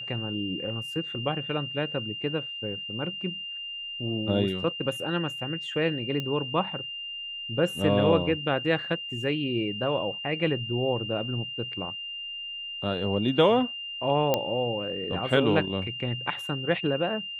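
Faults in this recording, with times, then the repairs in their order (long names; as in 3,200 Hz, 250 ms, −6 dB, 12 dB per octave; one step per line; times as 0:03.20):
whistle 2,800 Hz −34 dBFS
0:06.20: click −19 dBFS
0:14.34: click −9 dBFS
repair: click removal
notch filter 2,800 Hz, Q 30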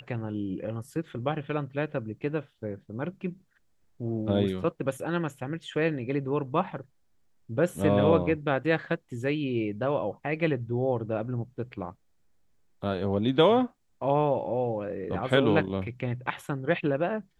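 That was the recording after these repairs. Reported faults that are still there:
none of them is left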